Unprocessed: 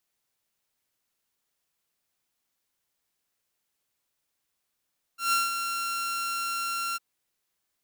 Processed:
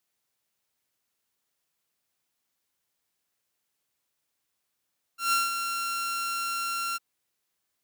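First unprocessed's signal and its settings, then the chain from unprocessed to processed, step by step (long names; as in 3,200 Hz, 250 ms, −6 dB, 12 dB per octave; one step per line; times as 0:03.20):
note with an ADSR envelope saw 1,370 Hz, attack 144 ms, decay 175 ms, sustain −7.5 dB, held 1.78 s, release 24 ms −18.5 dBFS
high-pass filter 56 Hz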